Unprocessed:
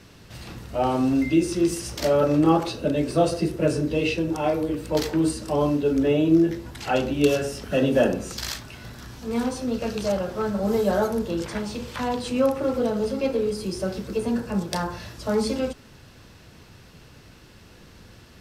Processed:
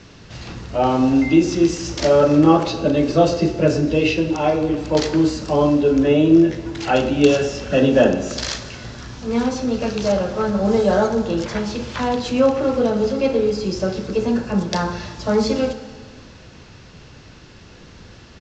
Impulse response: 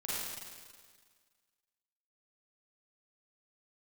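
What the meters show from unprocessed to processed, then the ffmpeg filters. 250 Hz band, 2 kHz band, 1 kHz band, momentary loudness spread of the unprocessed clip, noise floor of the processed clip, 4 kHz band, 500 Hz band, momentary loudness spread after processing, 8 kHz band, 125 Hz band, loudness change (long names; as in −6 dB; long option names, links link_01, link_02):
+6.0 dB, +5.5 dB, +5.5 dB, 11 LU, −43 dBFS, +5.5 dB, +6.0 dB, 11 LU, +3.0 dB, +5.5 dB, +5.5 dB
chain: -filter_complex "[0:a]asplit=2[link_01][link_02];[1:a]atrim=start_sample=2205,asetrate=40131,aresample=44100[link_03];[link_02][link_03]afir=irnorm=-1:irlink=0,volume=-14dB[link_04];[link_01][link_04]amix=inputs=2:normalize=0,aresample=16000,aresample=44100,volume=4.5dB"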